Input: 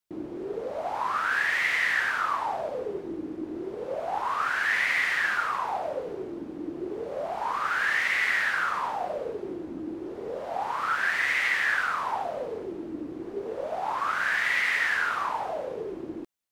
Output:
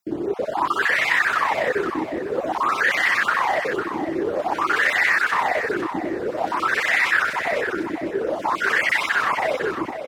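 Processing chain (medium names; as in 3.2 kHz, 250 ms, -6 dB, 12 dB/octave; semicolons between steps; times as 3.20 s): random holes in the spectrogram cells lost 31%; high-pass 58 Hz; in parallel at -1 dB: peak limiter -25.5 dBFS, peak gain reduction 11 dB; on the sum: granular stretch 0.61×, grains 62 ms; feedback delay 502 ms, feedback 23%, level -8.5 dB; trim +5.5 dB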